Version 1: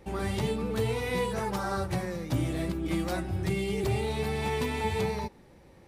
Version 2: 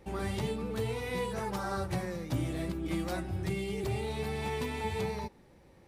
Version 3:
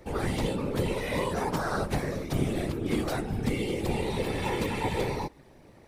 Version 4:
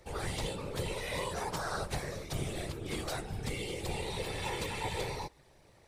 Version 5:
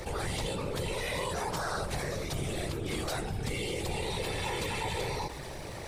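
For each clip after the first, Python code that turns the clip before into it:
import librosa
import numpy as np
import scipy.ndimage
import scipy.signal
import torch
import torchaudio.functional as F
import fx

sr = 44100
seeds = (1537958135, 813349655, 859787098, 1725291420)

y1 = fx.rider(x, sr, range_db=10, speed_s=0.5)
y1 = F.gain(torch.from_numpy(y1), -4.0).numpy()
y2 = fx.whisperise(y1, sr, seeds[0])
y2 = F.gain(torch.from_numpy(y2), 5.0).numpy()
y3 = fx.graphic_eq(y2, sr, hz=(250, 4000, 8000), db=(-10, 4, 6))
y3 = F.gain(torch.from_numpy(y3), -5.5).numpy()
y4 = fx.env_flatten(y3, sr, amount_pct=70)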